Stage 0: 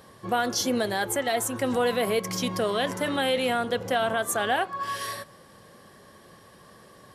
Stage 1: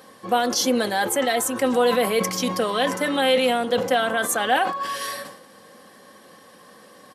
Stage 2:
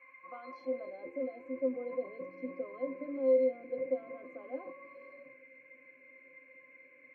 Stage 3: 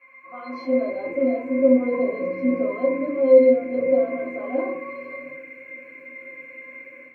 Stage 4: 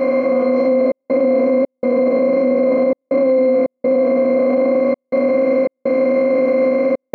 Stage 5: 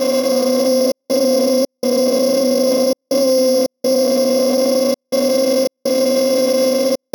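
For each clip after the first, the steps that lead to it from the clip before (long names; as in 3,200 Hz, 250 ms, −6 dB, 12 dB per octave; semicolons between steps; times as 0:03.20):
Bessel high-pass filter 210 Hz, order 2; comb filter 3.9 ms, depth 46%; level that may fall only so fast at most 83 dB per second; level +3.5 dB
band-pass filter sweep 1,100 Hz → 420 Hz, 0:00.45–0:01.03; noise in a band 1,600–2,500 Hz −43 dBFS; resonances in every octave C, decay 0.14 s
rectangular room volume 200 cubic metres, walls furnished, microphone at 3.1 metres; automatic gain control gain up to 10 dB
compressor on every frequency bin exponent 0.2; brickwall limiter −12 dBFS, peak gain reduction 10.5 dB; gate pattern "xxxxx.xxx.x" 82 BPM −60 dB; level +4 dB
samples sorted by size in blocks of 8 samples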